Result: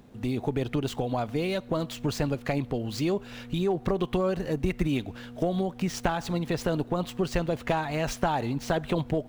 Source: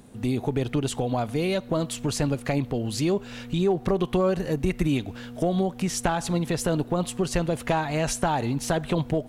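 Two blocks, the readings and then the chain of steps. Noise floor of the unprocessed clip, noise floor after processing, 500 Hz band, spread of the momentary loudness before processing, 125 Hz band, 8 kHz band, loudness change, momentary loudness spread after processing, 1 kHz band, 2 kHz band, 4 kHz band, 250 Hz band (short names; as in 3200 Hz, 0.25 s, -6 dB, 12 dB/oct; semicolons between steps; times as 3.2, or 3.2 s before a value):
-42 dBFS, -46 dBFS, -2.5 dB, 3 LU, -3.5 dB, -9.0 dB, -3.0 dB, 3 LU, -2.5 dB, -2.0 dB, -3.0 dB, -3.0 dB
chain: median filter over 5 samples; harmonic-percussive split percussive +3 dB; gain -4 dB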